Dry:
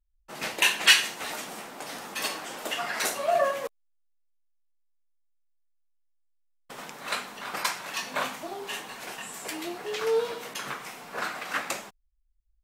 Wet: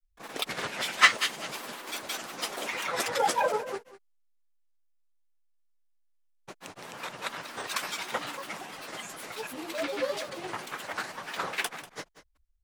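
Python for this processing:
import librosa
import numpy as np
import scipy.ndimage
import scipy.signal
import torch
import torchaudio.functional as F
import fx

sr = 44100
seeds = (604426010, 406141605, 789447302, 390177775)

y = fx.granulator(x, sr, seeds[0], grain_ms=100.0, per_s=20.0, spray_ms=271.0, spread_st=7)
y = y + 10.0 ** (-16.0 / 20.0) * np.pad(y, (int(192 * sr / 1000.0), 0))[:len(y)]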